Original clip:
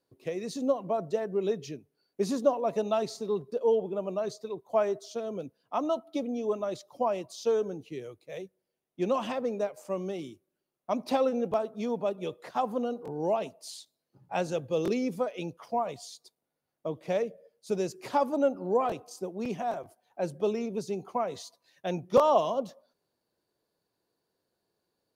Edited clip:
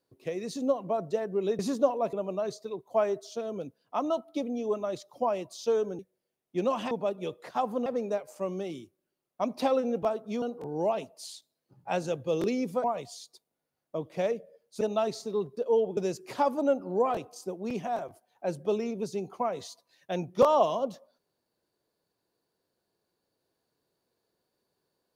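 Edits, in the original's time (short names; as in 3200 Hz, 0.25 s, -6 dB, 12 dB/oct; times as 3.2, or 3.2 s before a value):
1.59–2.22 cut
2.76–3.92 move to 17.72
7.78–8.43 cut
11.91–12.86 move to 9.35
15.28–15.75 cut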